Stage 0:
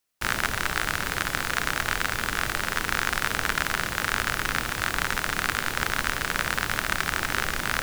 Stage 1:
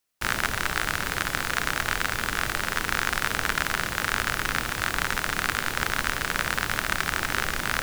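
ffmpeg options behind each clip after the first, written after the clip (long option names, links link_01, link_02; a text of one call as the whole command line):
ffmpeg -i in.wav -af anull out.wav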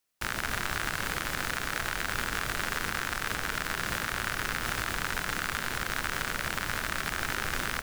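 ffmpeg -i in.wav -af "alimiter=limit=-12.5dB:level=0:latency=1:release=86,aecho=1:1:227:0.473,volume=-1.5dB" out.wav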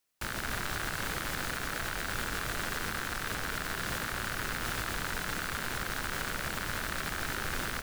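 ffmpeg -i in.wav -af "asoftclip=type=tanh:threshold=-24.5dB" out.wav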